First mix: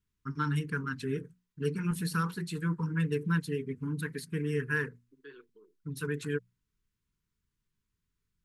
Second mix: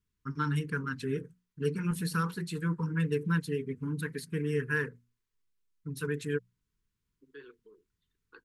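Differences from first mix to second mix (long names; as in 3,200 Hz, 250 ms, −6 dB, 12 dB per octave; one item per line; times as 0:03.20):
second voice: entry +2.10 s
master: add parametric band 530 Hz +4.5 dB 0.39 octaves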